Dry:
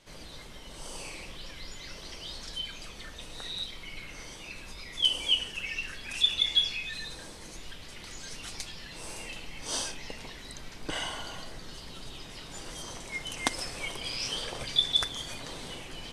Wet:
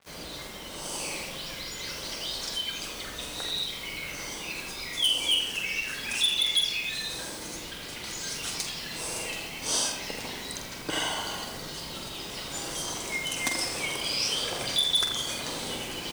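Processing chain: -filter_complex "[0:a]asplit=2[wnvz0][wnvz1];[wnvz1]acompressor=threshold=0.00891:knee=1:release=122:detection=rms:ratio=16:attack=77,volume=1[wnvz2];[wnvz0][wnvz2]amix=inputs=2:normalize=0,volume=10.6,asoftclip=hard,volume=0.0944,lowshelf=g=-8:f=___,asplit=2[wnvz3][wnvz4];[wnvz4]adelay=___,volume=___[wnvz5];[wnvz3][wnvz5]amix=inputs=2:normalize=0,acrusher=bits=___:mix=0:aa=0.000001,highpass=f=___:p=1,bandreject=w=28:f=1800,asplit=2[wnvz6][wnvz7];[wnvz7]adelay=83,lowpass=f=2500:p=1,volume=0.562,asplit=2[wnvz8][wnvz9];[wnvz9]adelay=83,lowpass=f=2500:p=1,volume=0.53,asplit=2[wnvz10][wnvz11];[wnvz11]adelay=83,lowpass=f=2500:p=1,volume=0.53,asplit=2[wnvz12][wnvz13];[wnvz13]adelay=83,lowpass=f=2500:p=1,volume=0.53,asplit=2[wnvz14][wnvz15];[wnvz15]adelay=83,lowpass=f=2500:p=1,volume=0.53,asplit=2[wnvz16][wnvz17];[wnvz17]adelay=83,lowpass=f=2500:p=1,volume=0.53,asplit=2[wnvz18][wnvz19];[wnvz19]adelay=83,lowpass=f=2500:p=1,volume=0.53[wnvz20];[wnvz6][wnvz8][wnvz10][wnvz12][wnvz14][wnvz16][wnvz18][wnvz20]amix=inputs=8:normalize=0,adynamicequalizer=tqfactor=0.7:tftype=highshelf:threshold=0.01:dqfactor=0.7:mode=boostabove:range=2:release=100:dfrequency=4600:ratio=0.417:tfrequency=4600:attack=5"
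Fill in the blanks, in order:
110, 46, 0.422, 7, 43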